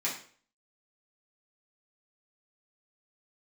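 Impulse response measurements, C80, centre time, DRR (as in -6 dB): 10.5 dB, 29 ms, -8.0 dB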